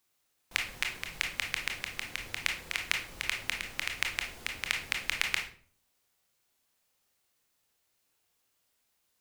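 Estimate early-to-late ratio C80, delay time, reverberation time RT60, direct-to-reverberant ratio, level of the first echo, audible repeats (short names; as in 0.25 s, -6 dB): 13.0 dB, none, 0.45 s, 1.5 dB, none, none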